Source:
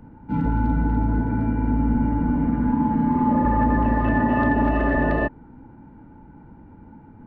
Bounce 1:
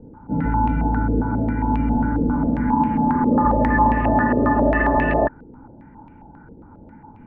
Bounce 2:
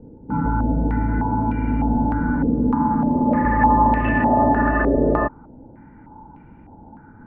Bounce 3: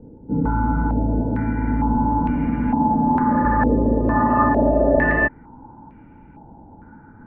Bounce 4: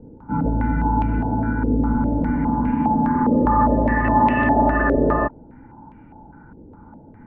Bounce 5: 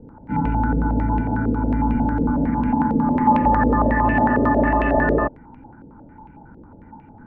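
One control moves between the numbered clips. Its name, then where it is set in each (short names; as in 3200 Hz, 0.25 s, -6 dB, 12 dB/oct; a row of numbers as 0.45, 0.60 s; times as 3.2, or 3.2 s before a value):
stepped low-pass, rate: 7.4, 3.3, 2.2, 4.9, 11 Hz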